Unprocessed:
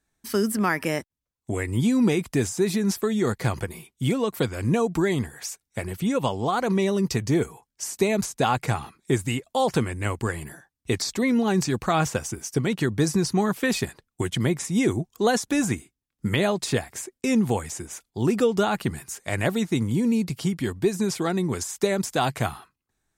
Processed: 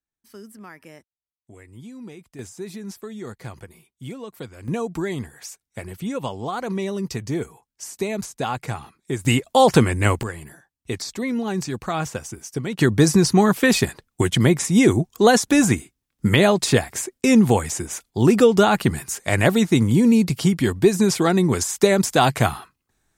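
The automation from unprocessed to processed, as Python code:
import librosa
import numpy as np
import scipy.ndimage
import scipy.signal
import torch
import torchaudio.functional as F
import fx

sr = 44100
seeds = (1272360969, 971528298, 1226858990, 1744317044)

y = fx.gain(x, sr, db=fx.steps((0.0, -18.5), (2.39, -11.0), (4.68, -3.5), (9.25, 8.5), (10.23, -3.0), (12.79, 7.0)))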